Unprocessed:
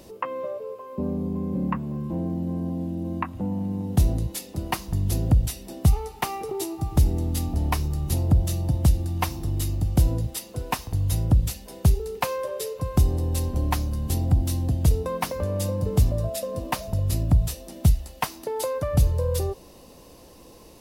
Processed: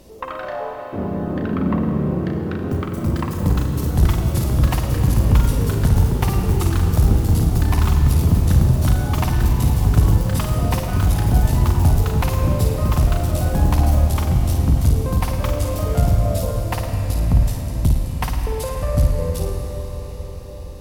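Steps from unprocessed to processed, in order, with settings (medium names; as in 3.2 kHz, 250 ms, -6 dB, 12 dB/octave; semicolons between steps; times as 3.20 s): bass shelf 68 Hz +11.5 dB; in parallel at -2 dB: compression, threshold -20 dBFS, peak gain reduction 12.5 dB; on the sum: valve stage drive 6 dB, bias 0.8; flutter echo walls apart 9.3 m, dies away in 0.59 s; on a send at -4 dB: reverberation RT60 6.3 s, pre-delay 75 ms; on the sum: ever faster or slower copies 117 ms, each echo +3 st, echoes 3; trim -1 dB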